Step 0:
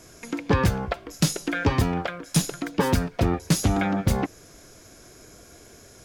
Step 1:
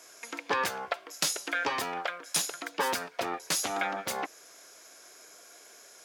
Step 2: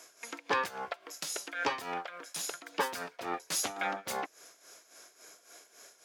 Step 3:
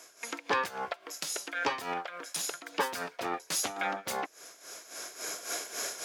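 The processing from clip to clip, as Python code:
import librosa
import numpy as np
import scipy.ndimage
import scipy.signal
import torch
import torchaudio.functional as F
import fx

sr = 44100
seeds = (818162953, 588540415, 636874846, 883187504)

y1 = scipy.signal.sosfilt(scipy.signal.butter(2, 680.0, 'highpass', fs=sr, output='sos'), x)
y1 = F.gain(torch.from_numpy(y1), -1.0).numpy()
y2 = y1 * (1.0 - 0.75 / 2.0 + 0.75 / 2.0 * np.cos(2.0 * np.pi * 3.6 * (np.arange(len(y1)) / sr)))
y3 = fx.recorder_agc(y2, sr, target_db=-25.0, rise_db_per_s=14.0, max_gain_db=30)
y3 = F.gain(torch.from_numpy(y3), 1.0).numpy()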